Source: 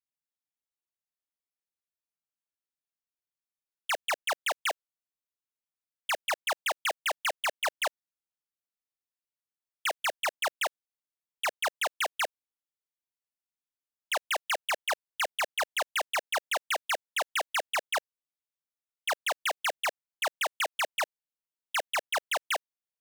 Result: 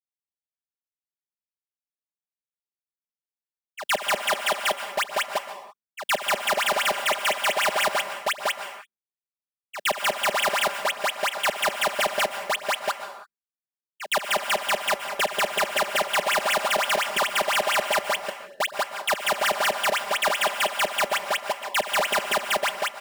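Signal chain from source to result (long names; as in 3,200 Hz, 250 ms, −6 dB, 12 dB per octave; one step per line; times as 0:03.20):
delay that plays each chunk backwards 538 ms, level −9 dB
backwards echo 120 ms −22 dB
downward expander −50 dBFS
parametric band 11,000 Hz −3.5 dB 0.36 octaves
in parallel at −2 dB: downward compressor, threshold −36 dBFS, peak gain reduction 9.5 dB
on the sum: soft clipping −33 dBFS, distortion −9 dB
parametric band 200 Hz +9 dB 1.8 octaves
comb filter 5 ms, depth 100%
on a send at −8 dB: convolution reverb, pre-delay 112 ms
on the sum: automatic gain control gain up to 3 dB
notch filter 6,200 Hz, Q 17
level +5.5 dB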